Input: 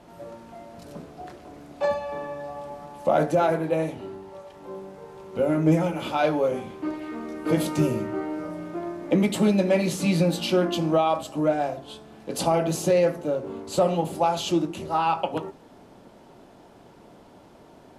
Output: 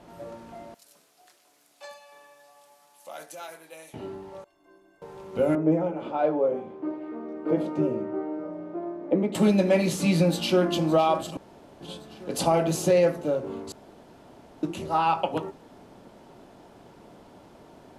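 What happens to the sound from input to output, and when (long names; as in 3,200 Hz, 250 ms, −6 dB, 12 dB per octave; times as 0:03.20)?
0:00.74–0:03.94: first difference
0:04.44–0:05.02: stiff-string resonator 320 Hz, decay 0.22 s, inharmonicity 0.03
0:05.55–0:09.35: resonant band-pass 460 Hz, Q 0.87
0:10.14–0:10.74: delay throw 560 ms, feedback 60%, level −15 dB
0:11.37–0:11.81: fill with room tone
0:13.72–0:14.63: fill with room tone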